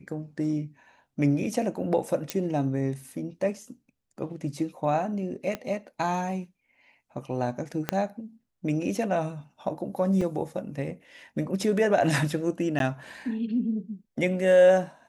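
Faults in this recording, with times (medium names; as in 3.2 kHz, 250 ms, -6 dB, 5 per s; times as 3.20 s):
2.30 s: pop -11 dBFS
5.55 s: pop -17 dBFS
7.89 s: pop -10 dBFS
10.21 s: dropout 4.1 ms
12.79–12.80 s: dropout 12 ms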